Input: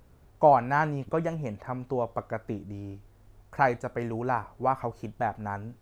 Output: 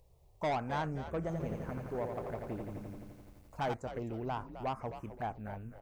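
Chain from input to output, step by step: companded quantiser 8-bit; envelope phaser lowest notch 230 Hz, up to 3400 Hz, full sweep at -24.5 dBFS; soft clip -23 dBFS, distortion -7 dB; frequency-shifting echo 0.259 s, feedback 34%, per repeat -86 Hz, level -11 dB; 1.21–3.74 lo-fi delay 85 ms, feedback 80%, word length 10-bit, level -5 dB; gain -6 dB

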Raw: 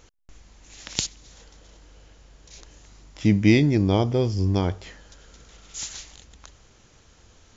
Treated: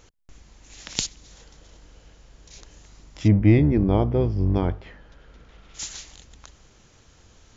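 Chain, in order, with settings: octaver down 1 oct, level -5 dB; 3.27–5.78 LPF 1500 Hz -> 3000 Hz 12 dB/oct

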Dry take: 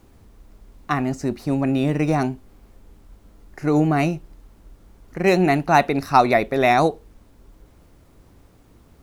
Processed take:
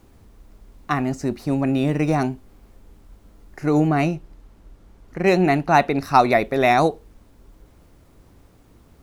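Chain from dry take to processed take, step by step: 3.89–6.04 high shelf 7400 Hz -6.5 dB

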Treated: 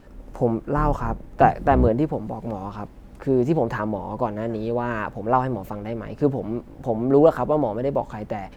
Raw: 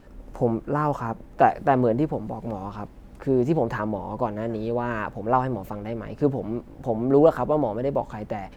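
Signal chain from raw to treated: 0.76–1.88 octaver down 2 oct, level +2 dB; gain +1.5 dB

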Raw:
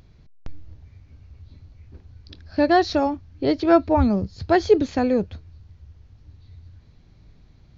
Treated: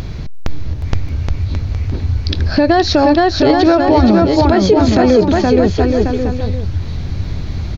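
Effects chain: compressor 2:1, threshold -45 dBFS, peak gain reduction 19 dB; bouncing-ball echo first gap 0.47 s, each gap 0.75×, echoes 5; maximiser +28.5 dB; gain -1 dB

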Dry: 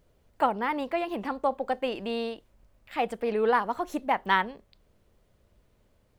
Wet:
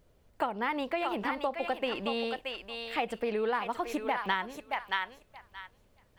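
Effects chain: thinning echo 0.625 s, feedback 20%, high-pass 1100 Hz, level -4 dB; compressor 6:1, threshold -28 dBFS, peak gain reduction 10.5 dB; dynamic EQ 2800 Hz, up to +5 dB, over -47 dBFS, Q 0.92

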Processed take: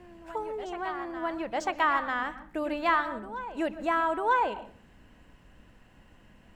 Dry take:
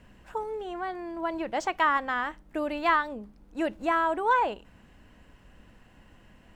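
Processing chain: reverse echo 0.946 s -13 dB; on a send at -13.5 dB: reverb RT60 0.45 s, pre-delay 0.12 s; on the sum: gain -1.5 dB

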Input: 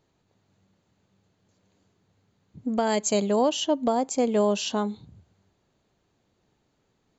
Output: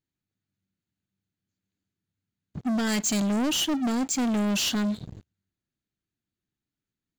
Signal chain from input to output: band shelf 680 Hz -11.5 dB; sample leveller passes 5; gain -8 dB

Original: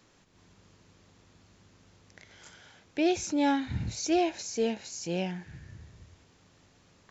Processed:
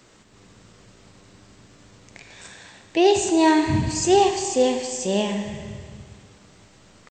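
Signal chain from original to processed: pitch shift +2 st; Schroeder reverb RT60 1.9 s, combs from 29 ms, DRR 6 dB; gain +9 dB

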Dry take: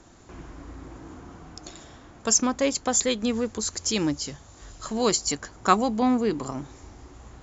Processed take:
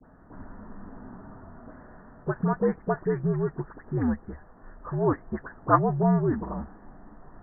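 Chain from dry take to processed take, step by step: spectral delay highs late, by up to 0.183 s; steep low-pass 1900 Hz 96 dB/oct; frequency shift -72 Hz

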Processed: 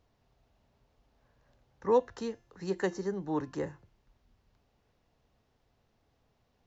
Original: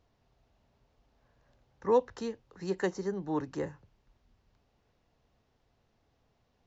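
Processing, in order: de-hum 346.7 Hz, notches 33

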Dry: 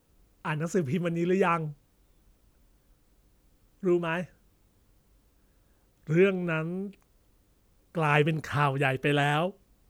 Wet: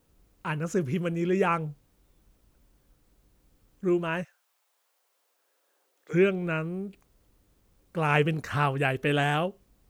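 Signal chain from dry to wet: 4.23–6.13 HPF 800 Hz -> 380 Hz 24 dB/oct

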